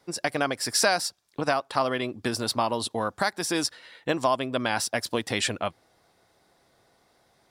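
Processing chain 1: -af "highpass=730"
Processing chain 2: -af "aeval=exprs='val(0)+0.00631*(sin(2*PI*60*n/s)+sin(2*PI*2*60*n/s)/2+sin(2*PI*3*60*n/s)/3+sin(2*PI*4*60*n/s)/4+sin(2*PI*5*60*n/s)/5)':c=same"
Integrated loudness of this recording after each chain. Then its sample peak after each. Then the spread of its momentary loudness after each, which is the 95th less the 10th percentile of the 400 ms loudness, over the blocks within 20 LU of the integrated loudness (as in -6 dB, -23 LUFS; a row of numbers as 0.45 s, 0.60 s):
-29.0 LUFS, -27.0 LUFS; -10.0 dBFS, -9.5 dBFS; 9 LU, 7 LU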